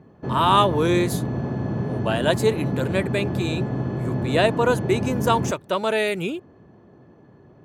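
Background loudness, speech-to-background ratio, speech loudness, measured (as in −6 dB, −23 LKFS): −27.0 LKFS, 4.0 dB, −23.0 LKFS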